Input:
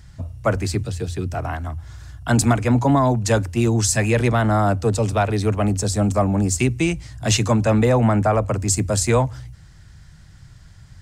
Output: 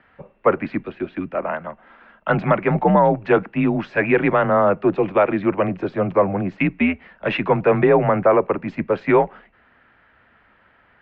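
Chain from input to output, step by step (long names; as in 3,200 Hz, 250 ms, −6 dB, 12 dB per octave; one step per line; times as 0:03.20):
single-sideband voice off tune −91 Hz 290–2,700 Hz
level +4.5 dB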